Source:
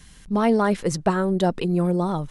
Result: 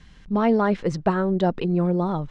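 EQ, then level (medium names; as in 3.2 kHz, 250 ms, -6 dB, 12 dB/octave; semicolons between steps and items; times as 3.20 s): distance through air 130 m; treble shelf 8 kHz -7 dB; 0.0 dB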